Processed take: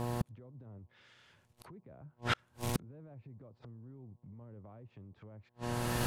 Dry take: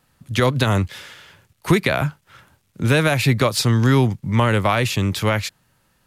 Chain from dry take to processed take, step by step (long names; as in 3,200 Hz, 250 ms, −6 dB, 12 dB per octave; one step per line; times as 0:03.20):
camcorder AGC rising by 23 dB per second
treble cut that deepens with the level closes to 510 Hz, closed at −15 dBFS
brickwall limiter −16.5 dBFS, peak gain reduction 11 dB
hum with harmonics 120 Hz, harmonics 9, −49 dBFS −4 dB per octave
gate with flip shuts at −32 dBFS, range −41 dB
level +12.5 dB